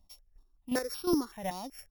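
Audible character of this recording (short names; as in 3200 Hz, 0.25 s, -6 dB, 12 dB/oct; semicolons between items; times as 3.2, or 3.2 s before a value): a buzz of ramps at a fixed pitch in blocks of 8 samples; chopped level 2.8 Hz, depth 60%, duty 20%; notches that jump at a steady rate 5.3 Hz 430–2000 Hz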